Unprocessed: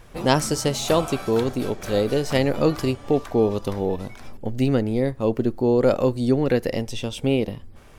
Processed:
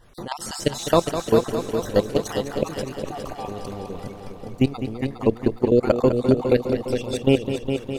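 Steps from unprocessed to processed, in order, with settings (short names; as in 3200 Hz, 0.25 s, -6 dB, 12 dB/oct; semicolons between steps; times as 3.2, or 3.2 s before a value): random spectral dropouts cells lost 36%; level quantiser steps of 19 dB; multi-head echo 0.205 s, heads first and second, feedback 62%, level -10 dB; gain +5 dB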